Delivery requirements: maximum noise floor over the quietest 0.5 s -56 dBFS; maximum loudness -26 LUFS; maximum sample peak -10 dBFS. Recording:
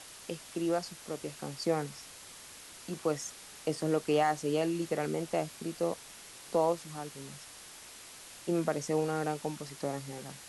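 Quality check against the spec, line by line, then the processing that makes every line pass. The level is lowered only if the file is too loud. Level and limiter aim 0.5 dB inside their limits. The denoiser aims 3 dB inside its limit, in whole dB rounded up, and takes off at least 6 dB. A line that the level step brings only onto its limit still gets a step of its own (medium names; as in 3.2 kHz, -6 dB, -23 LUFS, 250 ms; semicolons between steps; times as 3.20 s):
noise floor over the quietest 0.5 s -50 dBFS: fail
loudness -34.0 LUFS: pass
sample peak -16.5 dBFS: pass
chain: noise reduction 9 dB, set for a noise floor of -50 dBFS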